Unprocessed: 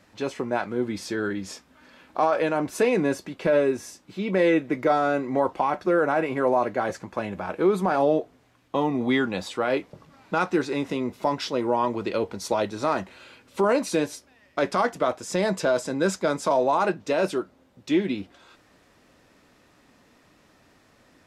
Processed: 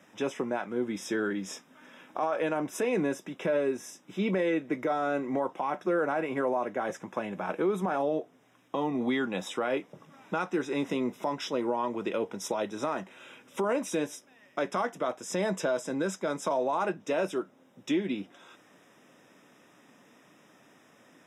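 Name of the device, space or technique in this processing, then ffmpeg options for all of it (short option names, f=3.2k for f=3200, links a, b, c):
PA system with an anti-feedback notch: -af "highpass=f=140:w=0.5412,highpass=f=140:w=1.3066,asuperstop=centerf=4400:order=20:qfactor=4.1,alimiter=limit=-19.5dB:level=0:latency=1:release=465"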